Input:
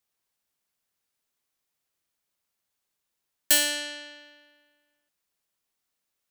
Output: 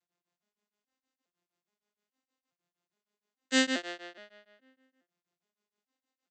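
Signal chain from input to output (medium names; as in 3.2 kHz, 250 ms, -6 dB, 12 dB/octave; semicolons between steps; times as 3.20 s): vocoder on a broken chord minor triad, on F3, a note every 417 ms; comb 2.8 ms, depth 32%; tremolo of two beating tones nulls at 6.4 Hz; trim +2.5 dB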